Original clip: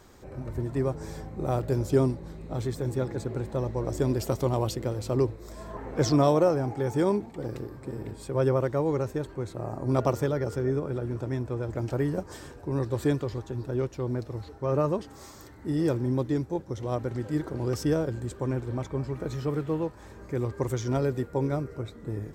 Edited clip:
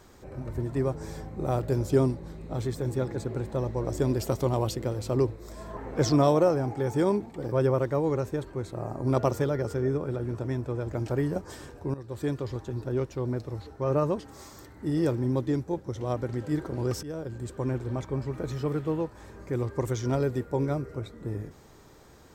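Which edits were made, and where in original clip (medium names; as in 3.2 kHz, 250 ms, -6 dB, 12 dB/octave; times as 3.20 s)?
7.52–8.34 s: delete
12.76–13.39 s: fade in, from -16 dB
17.85–18.63 s: fade in equal-power, from -17.5 dB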